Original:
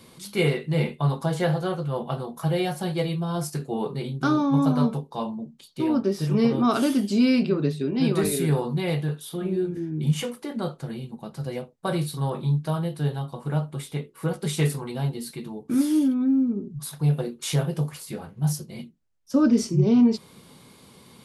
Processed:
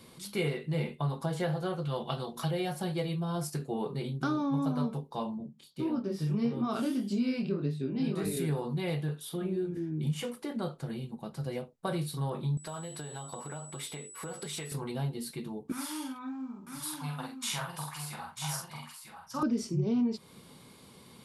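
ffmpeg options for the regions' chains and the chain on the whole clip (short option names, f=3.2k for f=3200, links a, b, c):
-filter_complex "[0:a]asettb=1/sr,asplit=3[a][b][c];[a]atrim=end=1.854[d];[b]atrim=start=1.85:end=2.51,asetpts=PTS-STARTPTS,afade=t=in:d=0.004:c=qsin,afade=t=out:st=0.656:d=0.004:c=qsin,equalizer=f=3.8k:w=0.8:g=11,bandreject=f=60:t=h:w=6,bandreject=f=120:t=h:w=6,bandreject=f=180:t=h:w=6,bandreject=f=240:t=h:w=6,bandreject=f=300:t=h:w=6,bandreject=f=360:t=h:w=6,bandreject=f=420:t=h:w=6,bandreject=f=480:t=h:w=6,bandreject=f=540:t=h:w=6,bandreject=f=600:t=h:w=6[e];[c]atrim=start=2.506[f];[d][e]acrossfade=d=0.004:c1=hsin:c2=qsin[g];[g][f]acrossfade=d=0.004:c1=qsin:c2=hsin,asettb=1/sr,asplit=3[h][i][j];[h]atrim=end=5.384[k];[i]atrim=start=5.38:end=8.37,asetpts=PTS-STARTPTS,afade=t=in:d=0.004:c=qsin,afade=t=out:st=2.986:d=0.004:c=qsin,highpass=f=140:p=1,bass=f=250:g=7,treble=f=4k:g=-1,flanger=delay=20:depth=6.7:speed=1.7[l];[j]atrim=start=8.366[m];[k][l]acrossfade=d=0.004:c1=hsin:c2=qsin[n];[n][m]acrossfade=d=0.004:c1=qsin:c2=hsin,asettb=1/sr,asplit=3[o][p][q];[o]atrim=end=12.574[r];[p]atrim=start=12.57:end=14.72,asetpts=PTS-STARTPTS,afade=t=in:d=0.004:c=qsin,afade=t=out:st=2.146:d=0.004:c=qsin,acompressor=threshold=-33dB:ratio=16:attack=3.2:release=140:knee=1:detection=peak,aeval=exprs='val(0)+0.00398*sin(2*PI*7900*n/s)':c=same,asplit=2[s][t];[t]highpass=f=720:p=1,volume=12dB,asoftclip=type=tanh:threshold=-19dB[u];[s][u]amix=inputs=2:normalize=0,lowpass=f=7.3k:p=1,volume=-6dB[v];[q]atrim=start=14.716[w];[r][v]acrossfade=d=0.004:c1=hsin:c2=qsin[x];[x][w]acrossfade=d=0.004:c1=qsin:c2=hsin,asettb=1/sr,asplit=3[y][z][aa];[y]atrim=end=15.724[ab];[z]atrim=start=15.72:end=19.43,asetpts=PTS-STARTPTS,afade=t=in:d=0.004:c=qsin,afade=t=out:st=3.706:d=0.004:c=qsin,lowshelf=f=640:t=q:w=3:g=-13.5,asplit=2[ac][ad];[ad]adelay=46,volume=-3.5dB[ae];[ac][ae]amix=inputs=2:normalize=0,atrim=end_sample=163611,aecho=1:1:945:0.473,atrim=end_sample=163611[af];[aa]atrim=start=19.426[ag];[ab][af]acrossfade=d=0.004:c1=hsin:c2=qsin[ah];[ah][ag]acrossfade=d=0.004:c1=qsin:c2=hsin,bandreject=f=6.3k:w=29,acompressor=threshold=-28dB:ratio=2,volume=-3.5dB"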